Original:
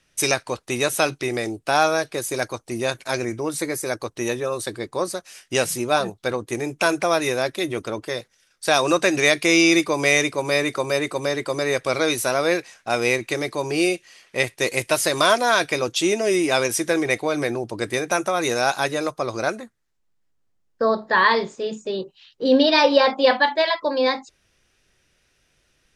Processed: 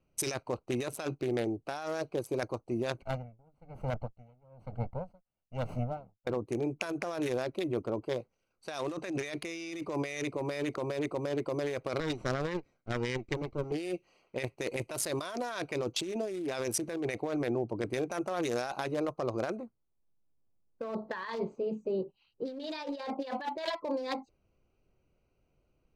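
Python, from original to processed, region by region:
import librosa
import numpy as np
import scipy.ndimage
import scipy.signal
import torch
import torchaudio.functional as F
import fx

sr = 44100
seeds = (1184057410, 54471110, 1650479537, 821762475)

y = fx.chain(x, sr, fx.lower_of_two(delay_ms=1.4),
    fx.bass_treble(bass_db=5, treble_db=-10),
    fx.tremolo_db(hz=1.1, depth_db=33), at=(3.02, 6.27))
y = fx.chain(y, sr, fx.lower_of_two(delay_ms=0.55),
    fx.lowpass(hz=7800.0, slope=24),
    fx.upward_expand(threshold_db=-35.0, expansion=1.5), at=(12.0, 13.72))
y = fx.wiener(y, sr, points=25)
y = fx.over_compress(y, sr, threshold_db=-26.0, ratio=-1.0)
y = F.gain(torch.from_numpy(y), -8.0).numpy()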